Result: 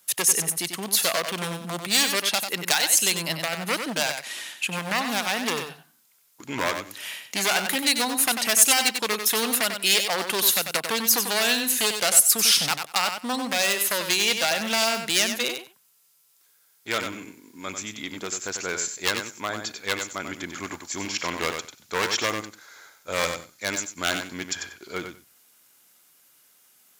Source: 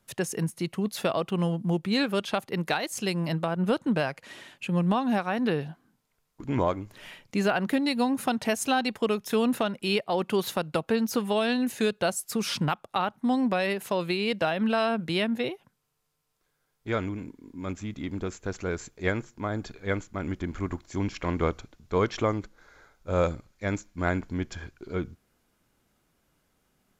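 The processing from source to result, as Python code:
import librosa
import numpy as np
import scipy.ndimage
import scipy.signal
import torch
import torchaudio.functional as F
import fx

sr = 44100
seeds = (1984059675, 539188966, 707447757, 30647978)

y = np.minimum(x, 2.0 * 10.0 ** (-22.5 / 20.0) - x)
y = fx.echo_feedback(y, sr, ms=94, feedback_pct=15, wet_db=-7.5)
y = 10.0 ** (-15.5 / 20.0) * np.tanh(y / 10.0 ** (-15.5 / 20.0))
y = scipy.signal.sosfilt(scipy.signal.butter(2, 86.0, 'highpass', fs=sr, output='sos'), y)
y = fx.tilt_eq(y, sr, slope=4.5)
y = y * 10.0 ** (4.0 / 20.0)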